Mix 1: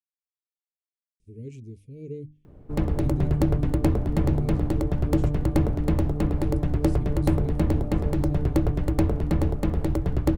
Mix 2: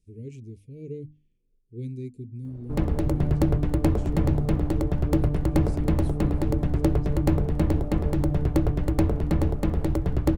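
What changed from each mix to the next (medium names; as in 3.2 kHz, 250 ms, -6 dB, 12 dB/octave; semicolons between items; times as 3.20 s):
speech: entry -1.20 s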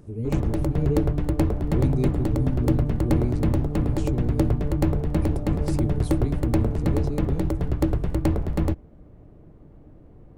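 speech +10.0 dB; background: entry -2.45 s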